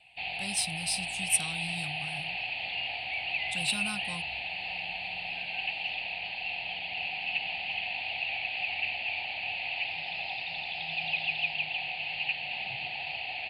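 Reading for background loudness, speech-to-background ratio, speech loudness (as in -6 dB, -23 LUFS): -32.0 LUFS, -1.0 dB, -33.0 LUFS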